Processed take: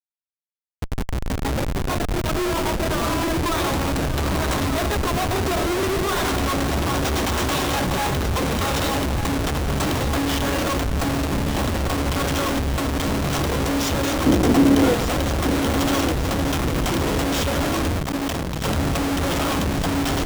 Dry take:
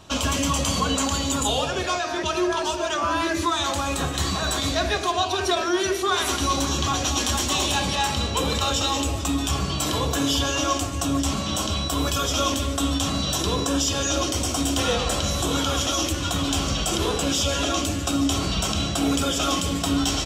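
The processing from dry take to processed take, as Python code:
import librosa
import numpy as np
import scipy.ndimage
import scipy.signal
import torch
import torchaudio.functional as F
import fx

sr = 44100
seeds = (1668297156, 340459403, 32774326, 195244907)

y = fx.fade_in_head(x, sr, length_s=2.65)
y = fx.peak_eq(y, sr, hz=13000.0, db=-4.5, octaves=1.9, at=(11.1, 11.73))
y = fx.schmitt(y, sr, flips_db=-23.0)
y = fx.peak_eq(y, sr, hz=300.0, db=11.5, octaves=1.7, at=(14.26, 14.94))
y = fx.echo_feedback(y, sr, ms=1193, feedback_pct=48, wet_db=-9.5)
y = fx.transformer_sat(y, sr, knee_hz=200.0, at=(18.02, 18.64))
y = y * 10.0 ** (2.0 / 20.0)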